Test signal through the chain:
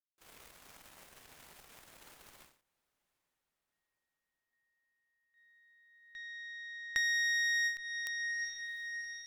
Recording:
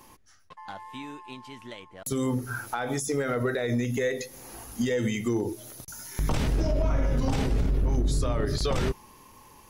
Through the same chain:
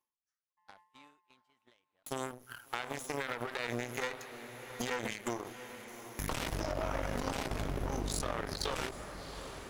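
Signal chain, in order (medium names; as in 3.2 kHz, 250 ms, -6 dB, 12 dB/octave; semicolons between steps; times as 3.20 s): peaking EQ 4.8 kHz -2.5 dB 1.2 oct; Chebyshev shaper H 2 -12 dB, 3 -9 dB, 5 -29 dB, 8 -45 dB, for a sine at -17.5 dBFS; on a send: echo that smears into a reverb 732 ms, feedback 61%, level -15 dB; on the sum: gate -60 dBFS, range -14 dB; in parallel at -8.5 dB: wavefolder -23 dBFS; on the sum: bass shelf 380 Hz -12 dB; compression 4:1, threshold -30 dBFS; endings held to a fixed fall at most 120 dB/s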